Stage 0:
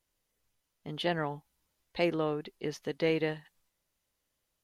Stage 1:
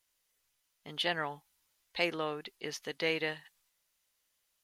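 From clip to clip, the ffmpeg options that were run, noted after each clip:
-af "tiltshelf=f=720:g=-7.5,volume=-2.5dB"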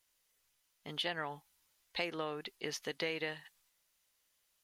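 -af "acompressor=threshold=-35dB:ratio=4,volume=1dB"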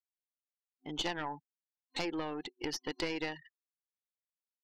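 -af "afftfilt=real='re*gte(hypot(re,im),0.00631)':imag='im*gte(hypot(re,im),0.00631)':win_size=1024:overlap=0.75,aeval=exprs='0.0944*(cos(1*acos(clip(val(0)/0.0944,-1,1)))-cos(1*PI/2))+0.0473*(cos(2*acos(clip(val(0)/0.0944,-1,1)))-cos(2*PI/2))+0.00376*(cos(6*acos(clip(val(0)/0.0944,-1,1)))-cos(6*PI/2))':c=same,superequalizer=6b=2.82:9b=2:14b=1.58"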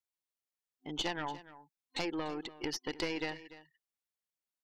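-af "aecho=1:1:292:0.15"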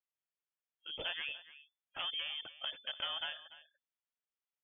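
-af "lowpass=f=3k:t=q:w=0.5098,lowpass=f=3k:t=q:w=0.6013,lowpass=f=3k:t=q:w=0.9,lowpass=f=3k:t=q:w=2.563,afreqshift=-3500,volume=-3dB"

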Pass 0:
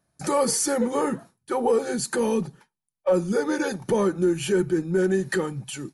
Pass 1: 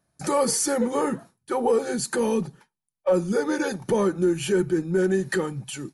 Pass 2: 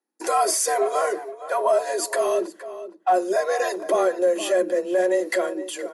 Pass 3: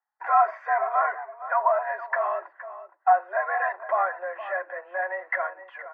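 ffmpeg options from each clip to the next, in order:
-af anull
-filter_complex "[0:a]afreqshift=180,agate=range=-14dB:threshold=-47dB:ratio=16:detection=peak,asplit=2[a][b];[b]adelay=466.5,volume=-13dB,highshelf=f=4k:g=-10.5[c];[a][c]amix=inputs=2:normalize=0,volume=1.5dB"
-af "asuperpass=centerf=1200:order=8:qfactor=0.95,volume=3.5dB"

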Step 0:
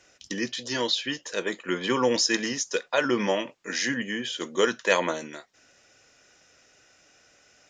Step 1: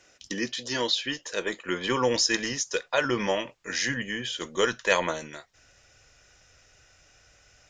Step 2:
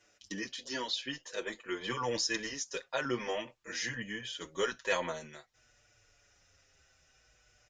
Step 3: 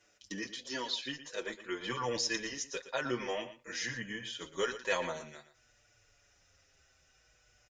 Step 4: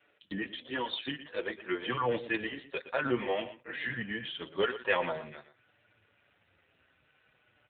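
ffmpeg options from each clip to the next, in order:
-af "asubboost=boost=10:cutoff=80"
-filter_complex "[0:a]asplit=2[a][b];[b]adelay=6.4,afreqshift=-0.51[c];[a][c]amix=inputs=2:normalize=1,volume=-5.5dB"
-af "aecho=1:1:117:0.224,volume=-1dB"
-af "volume=5.5dB" -ar 8000 -c:a libopencore_amrnb -b:a 7400

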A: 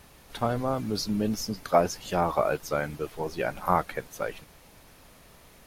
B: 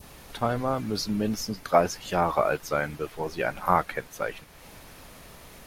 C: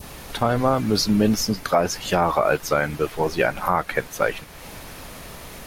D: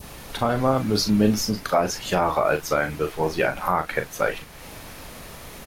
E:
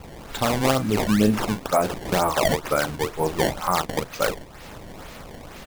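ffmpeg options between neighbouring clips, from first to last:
-af "acompressor=mode=upward:threshold=-39dB:ratio=2.5,adynamicequalizer=threshold=0.0112:dfrequency=1800:dqfactor=0.73:tfrequency=1800:tqfactor=0.73:attack=5:release=100:ratio=0.375:range=2:mode=boostabove:tftype=bell"
-af "alimiter=limit=-16dB:level=0:latency=1:release=197,volume=9dB"
-filter_complex "[0:a]asplit=2[a][b];[b]adelay=38,volume=-8.5dB[c];[a][c]amix=inputs=2:normalize=0,volume=-2dB"
-af "acrusher=samples=20:mix=1:aa=0.000001:lfo=1:lforange=32:lforate=2.1"

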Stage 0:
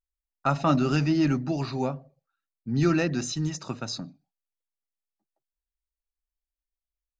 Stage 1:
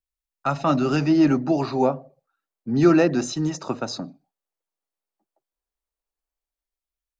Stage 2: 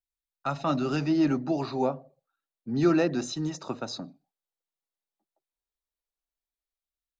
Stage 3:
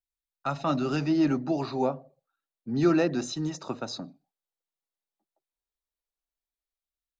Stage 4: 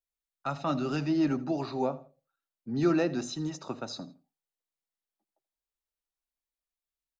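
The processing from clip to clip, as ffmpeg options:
-filter_complex "[0:a]lowshelf=f=430:g=-3,acrossover=split=250|1100[a][b][c];[b]dynaudnorm=f=210:g=9:m=11dB[d];[a][d][c]amix=inputs=3:normalize=0,volume=1dB"
-af "equalizer=f=3.8k:w=4:g=5,volume=-6.5dB"
-af anull
-af "aecho=1:1:81|162:0.112|0.0314,volume=-3dB"

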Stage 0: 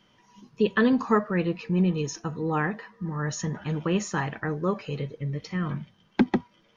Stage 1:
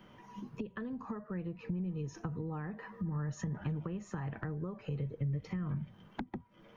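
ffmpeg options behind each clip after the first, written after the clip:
-filter_complex "[0:a]acompressor=threshold=-33dB:ratio=6,equalizer=f=5.1k:w=0.62:g=-14,acrossover=split=130[a][b];[b]acompressor=threshold=-48dB:ratio=6[c];[a][c]amix=inputs=2:normalize=0,volume=7dB"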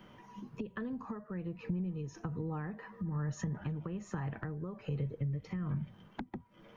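-af "tremolo=f=1.2:d=0.32,volume=1.5dB"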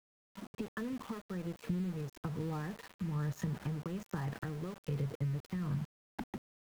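-af "aeval=exprs='val(0)*gte(abs(val(0)),0.00531)':c=same"

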